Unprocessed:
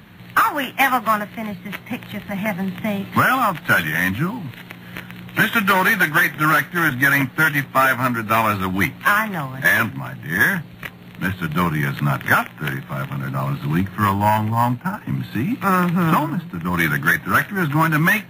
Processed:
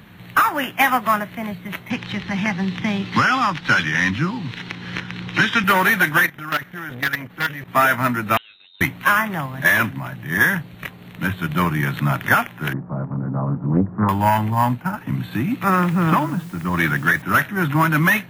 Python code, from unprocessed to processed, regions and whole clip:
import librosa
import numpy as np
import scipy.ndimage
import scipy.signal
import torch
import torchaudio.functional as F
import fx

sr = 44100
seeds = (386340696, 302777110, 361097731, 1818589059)

y = fx.chain(x, sr, fx.lowpass_res(hz=5200.0, q=2.9),
    fx.peak_eq(hz=640.0, db=-9.5, octaves=0.31),
    fx.band_squash(depth_pct=40), at=(1.9, 5.64))
y = fx.chain(y, sr, fx.peak_eq(hz=8900.0, db=-4.0, octaves=0.8),
    fx.level_steps(step_db=15),
    fx.transformer_sat(knee_hz=1900.0), at=(6.26, 7.68))
y = fx.chain(y, sr, fx.gate_flip(shuts_db=-15.0, range_db=-29),
    fx.freq_invert(carrier_hz=3900), at=(8.37, 8.81))
y = fx.chain(y, sr, fx.lowpass(hz=1000.0, slope=24),
    fx.peak_eq(hz=240.0, db=5.0, octaves=0.76),
    fx.doppler_dist(depth_ms=0.42), at=(12.73, 14.09))
y = fx.chain(y, sr, fx.high_shelf(hz=5100.0, db=-6.5),
    fx.quant_dither(seeds[0], bits=8, dither='triangular'), at=(15.7, 17.22))